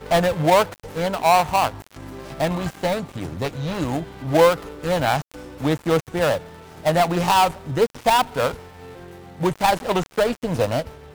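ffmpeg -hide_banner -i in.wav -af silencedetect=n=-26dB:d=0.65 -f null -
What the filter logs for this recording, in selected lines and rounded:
silence_start: 8.54
silence_end: 9.41 | silence_duration: 0.87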